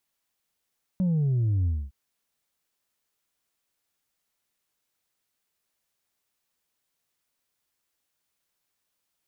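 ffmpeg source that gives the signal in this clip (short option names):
-f lavfi -i "aevalsrc='0.0841*clip((0.91-t)/0.25,0,1)*tanh(1.26*sin(2*PI*190*0.91/log(65/190)*(exp(log(65/190)*t/0.91)-1)))/tanh(1.26)':d=0.91:s=44100"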